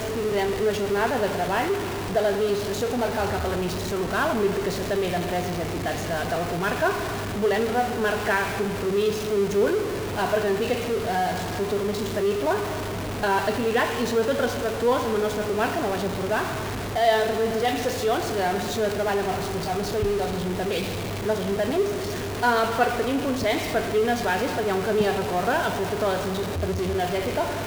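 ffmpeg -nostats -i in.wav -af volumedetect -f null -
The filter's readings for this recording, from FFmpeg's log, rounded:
mean_volume: -24.5 dB
max_volume: -8.9 dB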